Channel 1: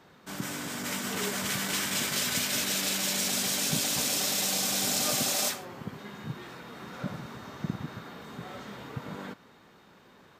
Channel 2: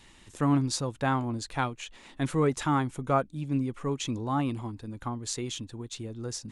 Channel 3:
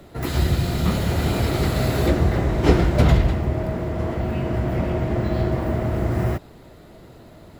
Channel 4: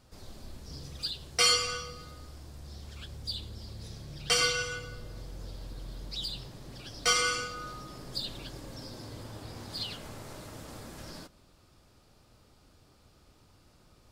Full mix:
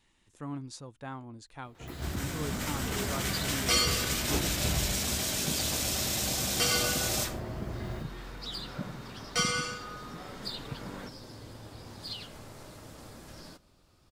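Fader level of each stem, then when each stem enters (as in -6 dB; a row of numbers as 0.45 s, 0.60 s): -3.0 dB, -14.0 dB, -16.5 dB, -3.0 dB; 1.75 s, 0.00 s, 1.65 s, 2.30 s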